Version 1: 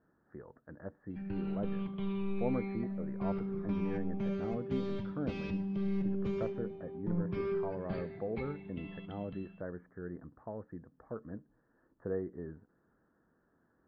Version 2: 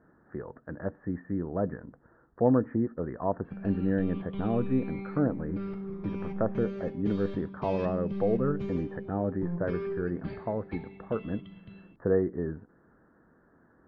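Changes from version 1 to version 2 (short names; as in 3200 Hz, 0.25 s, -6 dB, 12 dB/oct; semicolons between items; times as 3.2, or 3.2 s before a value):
speech +11.0 dB; background: entry +2.35 s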